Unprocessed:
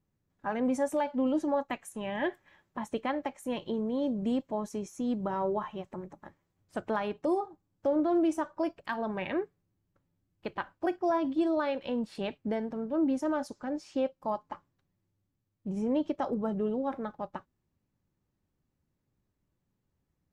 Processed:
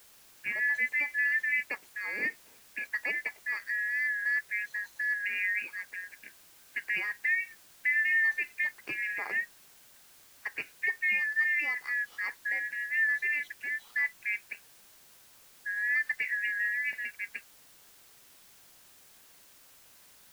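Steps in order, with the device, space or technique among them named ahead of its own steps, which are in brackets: split-band scrambled radio (four-band scrambler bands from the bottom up 2143; BPF 370–3200 Hz; white noise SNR 24 dB)

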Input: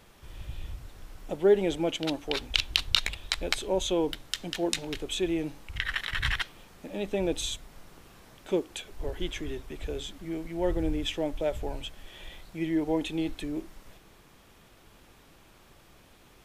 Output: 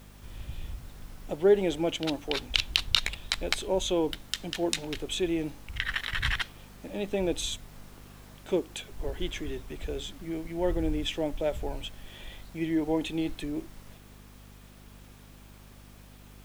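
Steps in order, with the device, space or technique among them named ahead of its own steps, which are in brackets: video cassette with head-switching buzz (buzz 50 Hz, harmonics 5, -52 dBFS -4 dB/oct; white noise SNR 31 dB)

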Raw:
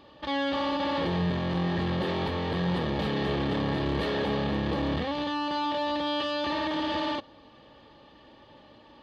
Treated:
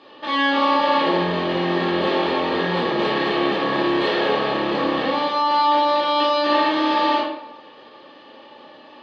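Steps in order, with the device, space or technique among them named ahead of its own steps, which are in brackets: supermarket ceiling speaker (BPF 320–5400 Hz; reverb RT60 0.85 s, pre-delay 8 ms, DRR -5.5 dB); gain +4.5 dB

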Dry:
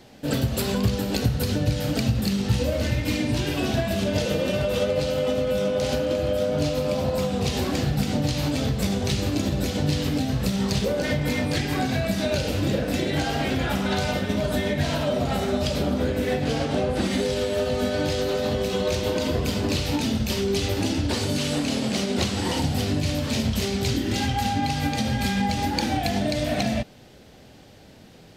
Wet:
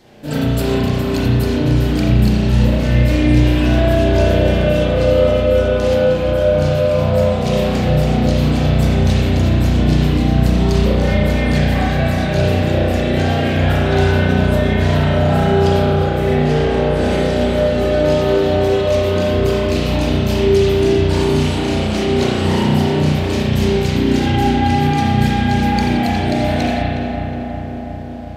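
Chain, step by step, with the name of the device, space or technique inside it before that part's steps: dub delay into a spring reverb (darkening echo 0.364 s, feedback 75%, low-pass 2000 Hz, level -5.5 dB; spring tank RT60 1.3 s, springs 33 ms, chirp 55 ms, DRR -7 dB); gain -1 dB

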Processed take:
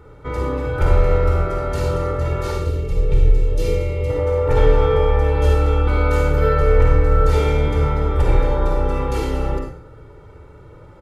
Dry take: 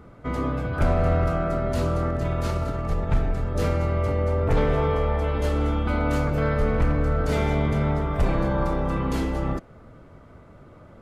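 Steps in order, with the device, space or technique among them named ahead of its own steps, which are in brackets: 2.56–4.1 band shelf 1100 Hz -13 dB; microphone above a desk (comb 2.2 ms, depth 72%; reverb RT60 0.50 s, pre-delay 42 ms, DRR 1 dB)

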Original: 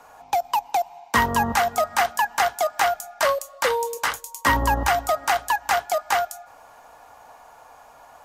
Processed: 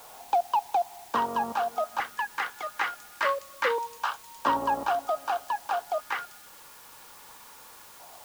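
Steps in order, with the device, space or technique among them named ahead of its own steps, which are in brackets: 3.78–4.41 HPF 720 Hz 24 dB/oct; shortwave radio (BPF 290–2700 Hz; tremolo 0.27 Hz, depth 45%; LFO notch square 0.25 Hz 690–2000 Hz; white noise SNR 20 dB); gain -1 dB

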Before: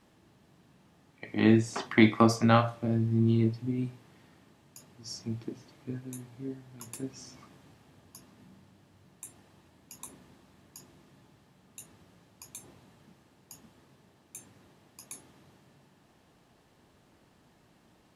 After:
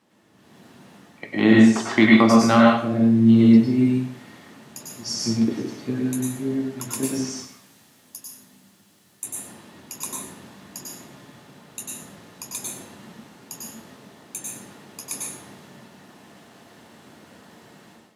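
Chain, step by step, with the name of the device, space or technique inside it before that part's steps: 7.3–9.24 pre-emphasis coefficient 0.8; far laptop microphone (reverb RT60 0.50 s, pre-delay 93 ms, DRR -2 dB; HPF 150 Hz 12 dB/oct; AGC gain up to 13 dB); gain -1 dB

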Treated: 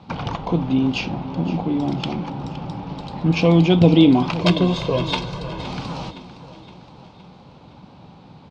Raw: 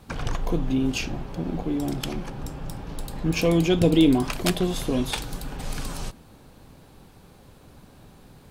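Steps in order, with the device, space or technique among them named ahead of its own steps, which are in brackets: guitar cabinet (speaker cabinet 93–4600 Hz, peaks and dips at 180 Hz +5 dB, 410 Hz -4 dB, 880 Hz +7 dB, 1700 Hz -9 dB); 4.41–5.64 comb 1.9 ms, depth 81%; feedback echo 0.516 s, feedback 52%, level -15.5 dB; gain +5 dB

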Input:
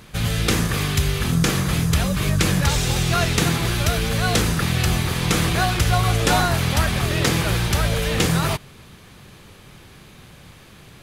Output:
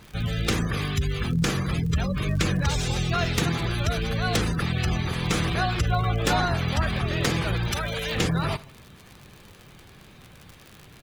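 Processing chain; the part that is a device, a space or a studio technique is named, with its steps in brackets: feedback echo 77 ms, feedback 44%, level -20.5 dB; spectral gate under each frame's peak -25 dB strong; record under a worn stylus (tracing distortion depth 0.028 ms; crackle 72/s -29 dBFS; pink noise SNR 35 dB); 7.71–8.16 tilt +2 dB/oct; gain -4.5 dB

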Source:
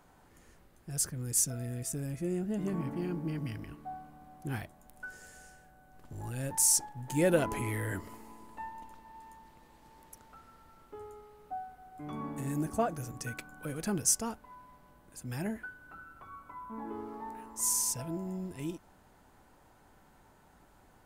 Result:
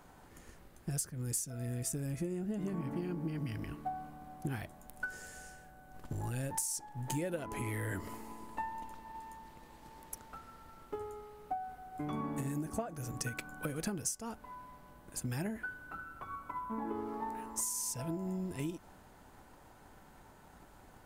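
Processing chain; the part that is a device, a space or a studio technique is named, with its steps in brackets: drum-bus smash (transient shaper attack +6 dB, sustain +1 dB; compressor 12:1, threshold -36 dBFS, peak gain reduction 18.5 dB; soft clip -25 dBFS, distortion -29 dB); gain +3 dB

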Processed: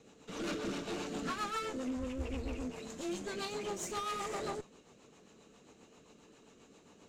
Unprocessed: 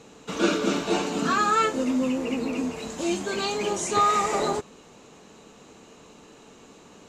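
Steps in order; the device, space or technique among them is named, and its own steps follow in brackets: overdriven rotary cabinet (tube stage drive 26 dB, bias 0.55; rotary speaker horn 7.5 Hz); 1.97–2.66 resonant low shelf 110 Hz +13.5 dB, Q 3; gain -6 dB

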